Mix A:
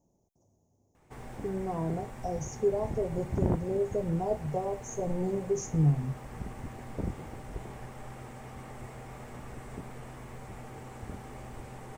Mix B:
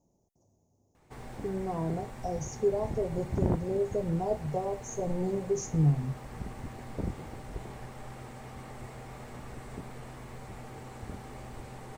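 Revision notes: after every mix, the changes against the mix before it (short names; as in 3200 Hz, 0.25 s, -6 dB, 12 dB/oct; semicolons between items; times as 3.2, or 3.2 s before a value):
master: add bell 4200 Hz +5 dB 0.48 oct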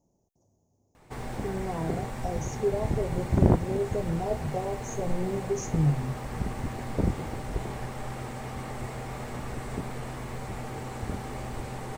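background +8.0 dB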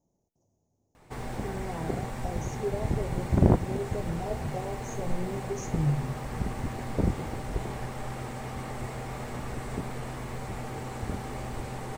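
speech -5.0 dB; reverb: on, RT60 0.70 s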